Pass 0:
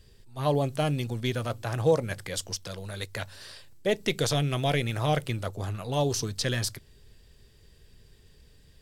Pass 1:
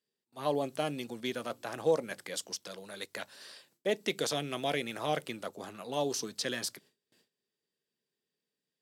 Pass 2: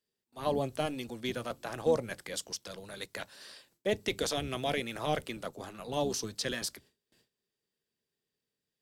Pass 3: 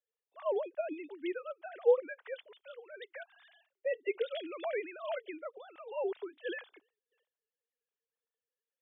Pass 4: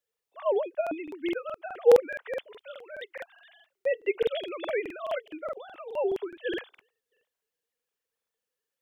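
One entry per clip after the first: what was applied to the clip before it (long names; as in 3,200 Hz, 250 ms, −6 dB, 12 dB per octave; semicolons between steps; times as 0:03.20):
noise gate with hold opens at −42 dBFS; high-pass filter 200 Hz 24 dB per octave; level −4.5 dB
sub-octave generator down 1 octave, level −4 dB
three sine waves on the formant tracks; level −2 dB
regular buffer underruns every 0.21 s, samples 2,048, repeat, from 0:00.82; level +6.5 dB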